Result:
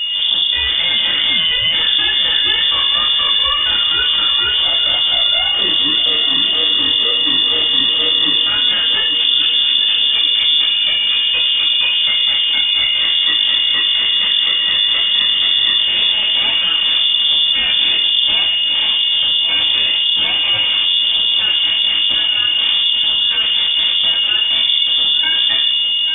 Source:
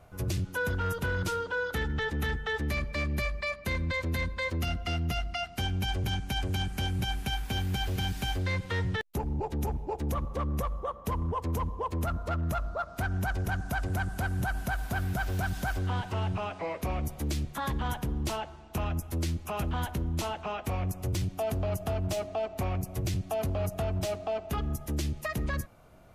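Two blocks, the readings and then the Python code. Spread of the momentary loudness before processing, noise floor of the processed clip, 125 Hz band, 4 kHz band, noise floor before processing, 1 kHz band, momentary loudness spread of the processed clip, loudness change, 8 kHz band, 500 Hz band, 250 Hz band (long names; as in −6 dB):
3 LU, −16 dBFS, below −10 dB, +33.5 dB, −47 dBFS, +5.0 dB, 1 LU, +21.0 dB, below −30 dB, 0.0 dB, 0.0 dB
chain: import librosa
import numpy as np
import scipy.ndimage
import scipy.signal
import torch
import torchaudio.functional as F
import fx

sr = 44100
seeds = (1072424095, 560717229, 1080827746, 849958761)

p1 = fx.spec_steps(x, sr, hold_ms=50)
p2 = fx.peak_eq(p1, sr, hz=170.0, db=-11.5, octaves=0.34)
p3 = fx.level_steps(p2, sr, step_db=12)
p4 = p2 + (p3 * 10.0 ** (2.0 / 20.0))
p5 = np.clip(p4, -10.0 ** (-32.5 / 20.0), 10.0 ** (-32.5 / 20.0))
p6 = fx.wow_flutter(p5, sr, seeds[0], rate_hz=2.1, depth_cents=59.0)
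p7 = p6 + 10.0 ** (-37.0 / 20.0) * np.sin(2.0 * np.pi * 640.0 * np.arange(len(p6)) / sr)
p8 = p7 + fx.echo_swing(p7, sr, ms=1125, ratio=3, feedback_pct=53, wet_db=-12.0, dry=0)
p9 = fx.room_shoebox(p8, sr, seeds[1], volume_m3=390.0, walls='furnished', distance_m=2.9)
p10 = fx.freq_invert(p9, sr, carrier_hz=3500)
p11 = fx.env_flatten(p10, sr, amount_pct=50)
y = p11 * 10.0 ** (7.0 / 20.0)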